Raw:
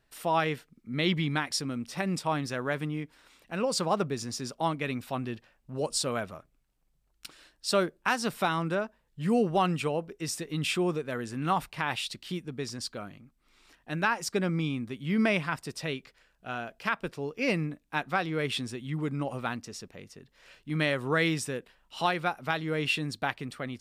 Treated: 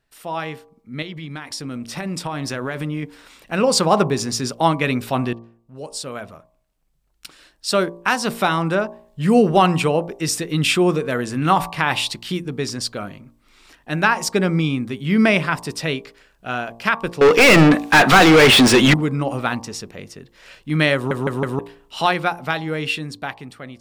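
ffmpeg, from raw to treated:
-filter_complex "[0:a]asettb=1/sr,asplit=3[a][b][c];[a]atrim=end=1.024[d];[b]atrim=start=1.02:end=3.03,asetpts=PTS-STARTPTS,afade=t=in:d=0.004:c=qsin,afade=t=out:st=2.006:d=0.004:c=qsin,acompressor=threshold=-33dB:ratio=6:attack=3.2:release=140:knee=1:detection=peak[e];[c]atrim=start=3.026[f];[d][e]acrossfade=d=0.004:c1=hsin:c2=qsin[g];[g][f]acrossfade=d=0.004:c1=qsin:c2=hsin,asettb=1/sr,asplit=3[h][i][j];[h]atrim=end=17.214[k];[i]atrim=start=17.21:end=18.94,asetpts=PTS-STARTPTS,afade=t=in:d=0.004:c=qsin,afade=t=out:st=1.726:d=0.004:c=qsin,asplit=2[l][m];[m]highpass=f=720:p=1,volume=37dB,asoftclip=type=tanh:threshold=-13.5dB[n];[l][n]amix=inputs=2:normalize=0,lowpass=f=3.4k:p=1,volume=-6dB[o];[j]atrim=start=18.936[p];[k][o]acrossfade=d=0.004:c1=hsin:c2=qsin[q];[q][p]acrossfade=d=0.004:c1=qsin:c2=hsin,asplit=6[r][s][t][u][v][w];[r]atrim=end=5.33,asetpts=PTS-STARTPTS,afade=t=out:st=5.326:d=0.004:c=hsin:silence=0.0841395[x];[s]atrim=start=5.33:end=21.112,asetpts=PTS-STARTPTS,afade=t=in:d=4.14:silence=0.0841395[y];[t]atrim=start=20.948:end=21.112[z];[u]atrim=start=20.948:end=21.112[aa];[v]atrim=start=20.948:end=21.112[ab];[w]atrim=start=21.588[ac];[x][y]concat=n=2:v=0:a=1[ad];[ad][z]acrossfade=d=0.004:c1=hsin:c2=hsin[ae];[ae][aa]acrossfade=d=0.004:c1=hsin:c2=hsin[af];[af][ab]acrossfade=d=0.004:c1=hsin:c2=hsin[ag];[ag][ac]acrossfade=d=0.004:c1=hsin:c2=hsin,bandreject=f=57.73:t=h:w=4,bandreject=f=115.46:t=h:w=4,bandreject=f=173.19:t=h:w=4,bandreject=f=230.92:t=h:w=4,bandreject=f=288.65:t=h:w=4,bandreject=f=346.38:t=h:w=4,bandreject=f=404.11:t=h:w=4,bandreject=f=461.84:t=h:w=4,bandreject=f=519.57:t=h:w=4,bandreject=f=577.3:t=h:w=4,bandreject=f=635.03:t=h:w=4,bandreject=f=692.76:t=h:w=4,bandreject=f=750.49:t=h:w=4,bandreject=f=808.22:t=h:w=4,bandreject=f=865.95:t=h:w=4,bandreject=f=923.68:t=h:w=4,bandreject=f=981.41:t=h:w=4,bandreject=f=1.03914k:t=h:w=4,bandreject=f=1.09687k:t=h:w=4,bandreject=f=1.1546k:t=h:w=4,dynaudnorm=f=300:g=11:m=13.5dB"

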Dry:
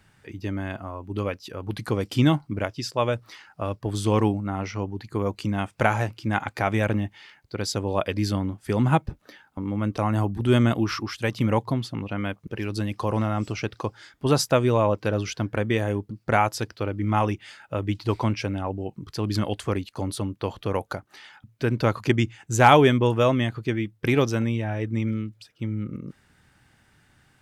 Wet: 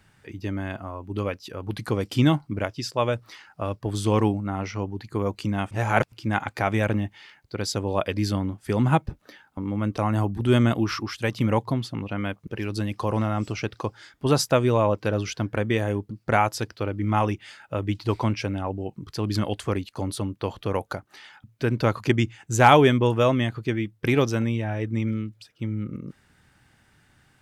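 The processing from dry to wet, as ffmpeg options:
-filter_complex "[0:a]asplit=3[a][b][c];[a]atrim=end=5.712[d];[b]atrim=start=5.708:end=6.122,asetpts=PTS-STARTPTS,areverse[e];[c]atrim=start=6.118[f];[d][e]acrossfade=d=0.004:c1=hsin:c2=hsin[g];[g][f]acrossfade=d=0.004:c1=hsin:c2=hsin"

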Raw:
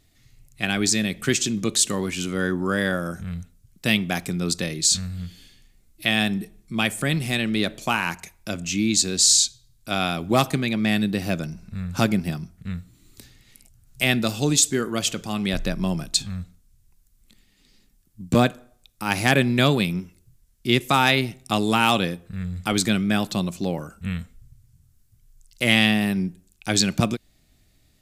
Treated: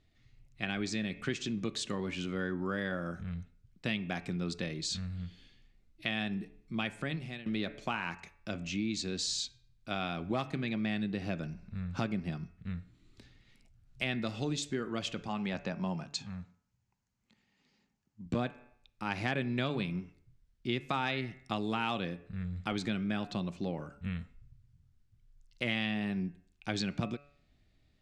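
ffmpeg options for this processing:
-filter_complex "[0:a]asettb=1/sr,asplit=3[a][b][c];[a]atrim=end=15.284[d];[b]atrim=start=15.28:end=18.26,asetpts=PTS-STARTPTS,afade=t=in:d=0.004:c=qsin,afade=t=out:st=2.976:d=0.004:c=qsin,highpass=130,equalizer=f=320:t=q:w=4:g=-6,equalizer=f=880:t=q:w=4:g=8,equalizer=f=3.6k:t=q:w=4:g=-6,equalizer=f=6.7k:t=q:w=4:g=5,lowpass=f=8.2k:w=0.5412,lowpass=f=8.2k:w=1.3066[e];[c]atrim=start=18.256[f];[d][e]acrossfade=d=0.004:c1=hsin:c2=qsin[g];[g][f]acrossfade=d=0.004:c1=qsin:c2=hsin,asplit=2[h][i];[h]atrim=end=7.46,asetpts=PTS-STARTPTS,afade=t=out:st=6.94:d=0.52:silence=0.1[j];[i]atrim=start=7.46,asetpts=PTS-STARTPTS,afade=t=in:d=0.004:c=hsin:silence=0.1[k];[j][k]concat=n=2:v=0:a=1,lowpass=3.6k,bandreject=f=143.5:t=h:w=4,bandreject=f=287:t=h:w=4,bandreject=f=430.5:t=h:w=4,bandreject=f=574:t=h:w=4,bandreject=f=717.5:t=h:w=4,bandreject=f=861:t=h:w=4,bandreject=f=1.0045k:t=h:w=4,bandreject=f=1.148k:t=h:w=4,bandreject=f=1.2915k:t=h:w=4,bandreject=f=1.435k:t=h:w=4,bandreject=f=1.5785k:t=h:w=4,bandreject=f=1.722k:t=h:w=4,bandreject=f=1.8655k:t=h:w=4,bandreject=f=2.009k:t=h:w=4,bandreject=f=2.1525k:t=h:w=4,bandreject=f=2.296k:t=h:w=4,bandreject=f=2.4395k:t=h:w=4,bandreject=f=2.583k:t=h:w=4,bandreject=f=2.7265k:t=h:w=4,acompressor=threshold=-24dB:ratio=2.5,volume=-7.5dB"

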